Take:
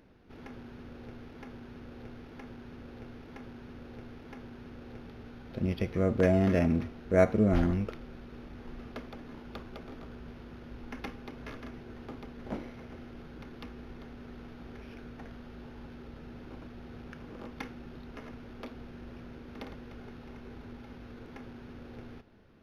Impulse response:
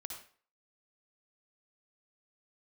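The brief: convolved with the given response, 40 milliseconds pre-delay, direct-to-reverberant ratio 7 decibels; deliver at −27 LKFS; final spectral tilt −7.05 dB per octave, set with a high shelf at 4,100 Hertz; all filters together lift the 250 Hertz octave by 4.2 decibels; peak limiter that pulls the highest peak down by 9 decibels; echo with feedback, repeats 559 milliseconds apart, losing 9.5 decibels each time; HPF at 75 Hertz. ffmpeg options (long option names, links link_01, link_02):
-filter_complex "[0:a]highpass=75,equalizer=frequency=250:width_type=o:gain=5.5,highshelf=frequency=4100:gain=-4,alimiter=limit=-17dB:level=0:latency=1,aecho=1:1:559|1118|1677|2236:0.335|0.111|0.0365|0.012,asplit=2[link_01][link_02];[1:a]atrim=start_sample=2205,adelay=40[link_03];[link_02][link_03]afir=irnorm=-1:irlink=0,volume=-4.5dB[link_04];[link_01][link_04]amix=inputs=2:normalize=0,volume=9dB"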